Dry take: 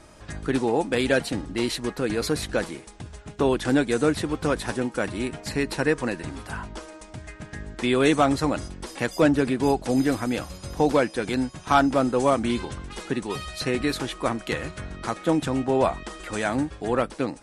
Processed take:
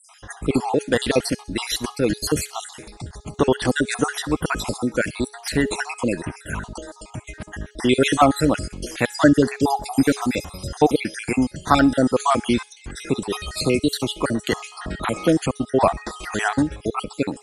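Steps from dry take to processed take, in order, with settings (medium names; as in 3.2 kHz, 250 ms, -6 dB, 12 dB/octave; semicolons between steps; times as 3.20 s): random holes in the spectrogram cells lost 56%; treble shelf 6.6 kHz +6 dB; de-hum 420.2 Hz, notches 12; on a send: feedback echo behind a high-pass 65 ms, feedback 46%, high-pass 3.5 kHz, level -18.5 dB; 13.64–15.51 s: on the sum: three bands compressed up and down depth 40%; trim +6.5 dB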